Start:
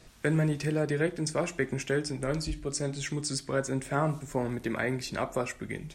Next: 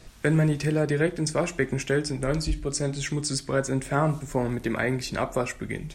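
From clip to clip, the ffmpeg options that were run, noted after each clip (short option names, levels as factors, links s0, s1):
-af "lowshelf=f=65:g=7,volume=1.58"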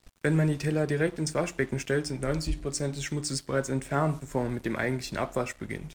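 -af "aeval=exprs='sgn(val(0))*max(abs(val(0))-0.00473,0)':c=same,volume=0.75"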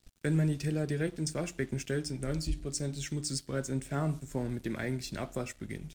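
-af "equalizer=f=500:t=o:w=1:g=-4,equalizer=f=1000:t=o:w=1:g=-8,equalizer=f=2000:t=o:w=1:g=-4,volume=0.75"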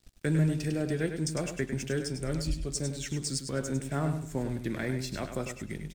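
-af "aecho=1:1:101|202|303:0.398|0.0995|0.0249,volume=1.19"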